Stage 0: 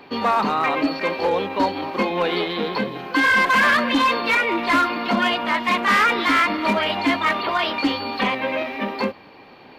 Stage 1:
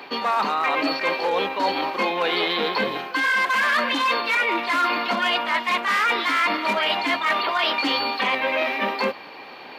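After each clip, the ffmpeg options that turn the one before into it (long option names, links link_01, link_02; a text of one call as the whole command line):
ffmpeg -i in.wav -af "highpass=frequency=720:poles=1,areverse,acompressor=threshold=-28dB:ratio=6,areverse,volume=8.5dB" out.wav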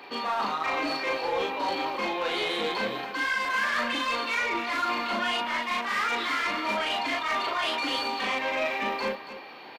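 ffmpeg -i in.wav -filter_complex "[0:a]asoftclip=type=tanh:threshold=-17.5dB,asplit=2[link_01][link_02];[link_02]aecho=0:1:37.9|279.9:0.891|0.282[link_03];[link_01][link_03]amix=inputs=2:normalize=0,volume=-7dB" out.wav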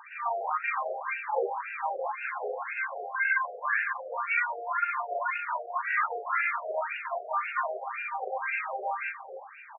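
ffmpeg -i in.wav -af "afftfilt=real='re*between(b*sr/1024,540*pow(2000/540,0.5+0.5*sin(2*PI*1.9*pts/sr))/1.41,540*pow(2000/540,0.5+0.5*sin(2*PI*1.9*pts/sr))*1.41)':imag='im*between(b*sr/1024,540*pow(2000/540,0.5+0.5*sin(2*PI*1.9*pts/sr))/1.41,540*pow(2000/540,0.5+0.5*sin(2*PI*1.9*pts/sr))*1.41)':win_size=1024:overlap=0.75,volume=2.5dB" out.wav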